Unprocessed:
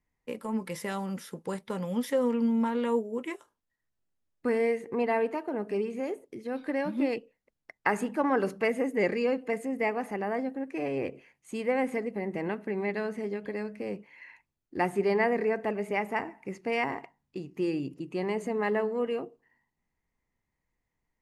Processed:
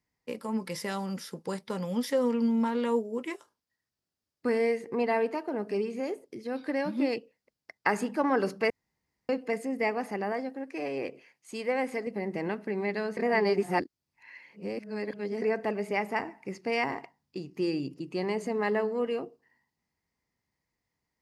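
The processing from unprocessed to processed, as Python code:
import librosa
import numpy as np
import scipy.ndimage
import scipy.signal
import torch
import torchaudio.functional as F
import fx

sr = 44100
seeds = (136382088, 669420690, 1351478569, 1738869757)

y = fx.highpass(x, sr, hz=320.0, slope=6, at=(10.32, 12.07))
y = fx.edit(y, sr, fx.room_tone_fill(start_s=8.7, length_s=0.59),
    fx.reverse_span(start_s=13.17, length_s=2.25), tone=tone)
y = scipy.signal.sosfilt(scipy.signal.butter(2, 69.0, 'highpass', fs=sr, output='sos'), y)
y = fx.peak_eq(y, sr, hz=4900.0, db=9.5, octaves=0.48)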